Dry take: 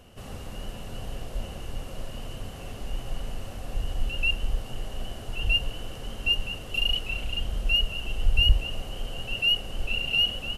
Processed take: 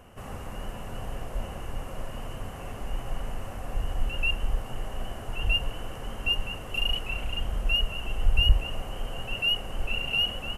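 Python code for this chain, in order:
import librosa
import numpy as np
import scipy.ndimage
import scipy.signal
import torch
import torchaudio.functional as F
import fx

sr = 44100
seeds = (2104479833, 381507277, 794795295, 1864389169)

y = fx.graphic_eq(x, sr, hz=(1000, 2000, 4000), db=(6, 4, -10))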